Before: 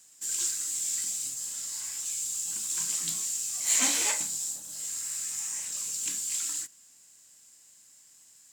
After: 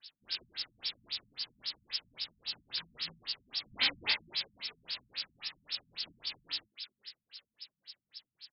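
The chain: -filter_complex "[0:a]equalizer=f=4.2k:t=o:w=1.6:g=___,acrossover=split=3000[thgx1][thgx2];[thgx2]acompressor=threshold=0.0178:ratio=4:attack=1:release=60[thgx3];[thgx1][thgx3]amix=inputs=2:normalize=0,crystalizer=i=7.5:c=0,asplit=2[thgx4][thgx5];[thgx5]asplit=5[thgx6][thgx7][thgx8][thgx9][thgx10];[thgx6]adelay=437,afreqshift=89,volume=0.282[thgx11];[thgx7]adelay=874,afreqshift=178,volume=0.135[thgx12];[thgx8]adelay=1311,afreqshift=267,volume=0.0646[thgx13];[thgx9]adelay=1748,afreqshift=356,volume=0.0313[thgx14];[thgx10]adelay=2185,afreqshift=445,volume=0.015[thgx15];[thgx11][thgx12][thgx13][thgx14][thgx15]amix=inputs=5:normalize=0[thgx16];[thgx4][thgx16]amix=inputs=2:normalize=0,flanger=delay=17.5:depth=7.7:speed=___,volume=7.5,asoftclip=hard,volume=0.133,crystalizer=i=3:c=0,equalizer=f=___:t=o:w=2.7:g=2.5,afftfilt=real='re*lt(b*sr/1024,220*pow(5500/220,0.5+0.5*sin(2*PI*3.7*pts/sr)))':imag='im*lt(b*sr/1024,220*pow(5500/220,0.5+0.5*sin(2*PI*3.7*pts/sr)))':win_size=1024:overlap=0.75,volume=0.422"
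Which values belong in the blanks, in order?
12, 0.92, 80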